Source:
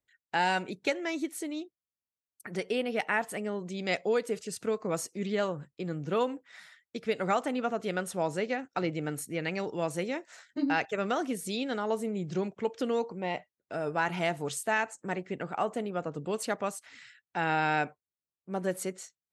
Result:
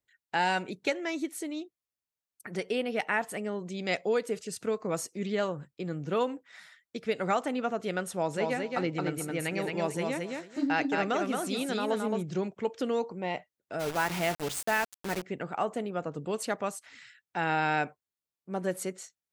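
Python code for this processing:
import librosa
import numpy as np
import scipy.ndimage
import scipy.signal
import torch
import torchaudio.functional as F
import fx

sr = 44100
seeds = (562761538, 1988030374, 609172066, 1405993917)

y = fx.echo_feedback(x, sr, ms=220, feedback_pct=18, wet_db=-3.5, at=(8.33, 12.21), fade=0.02)
y = fx.quant_dither(y, sr, seeds[0], bits=6, dither='none', at=(13.79, 15.21), fade=0.02)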